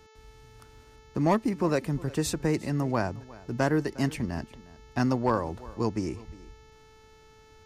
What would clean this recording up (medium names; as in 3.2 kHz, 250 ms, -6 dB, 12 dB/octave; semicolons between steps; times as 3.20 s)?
clip repair -15 dBFS; de-hum 437.8 Hz, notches 16; inverse comb 357 ms -20.5 dB